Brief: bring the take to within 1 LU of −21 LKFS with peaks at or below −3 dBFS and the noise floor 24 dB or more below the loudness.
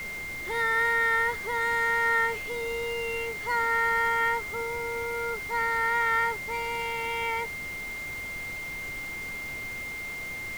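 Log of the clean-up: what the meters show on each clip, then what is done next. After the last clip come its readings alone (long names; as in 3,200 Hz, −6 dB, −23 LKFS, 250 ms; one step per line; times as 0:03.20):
interfering tone 2,100 Hz; level of the tone −34 dBFS; background noise floor −36 dBFS; target noise floor −52 dBFS; integrated loudness −28.0 LKFS; sample peak −14.0 dBFS; target loudness −21.0 LKFS
→ notch filter 2,100 Hz, Q 30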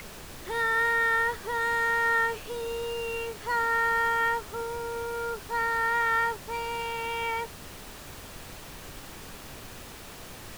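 interfering tone none found; background noise floor −44 dBFS; target noise floor −52 dBFS
→ noise reduction from a noise print 8 dB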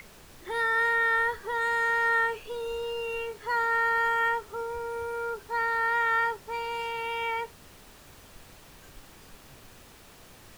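background noise floor −52 dBFS; integrated loudness −27.5 LKFS; sample peak −15.0 dBFS; target loudness −21.0 LKFS
→ level +6.5 dB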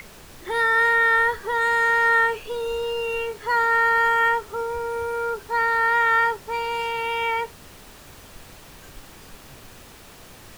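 integrated loudness −21.0 LKFS; sample peak −8.5 dBFS; background noise floor −46 dBFS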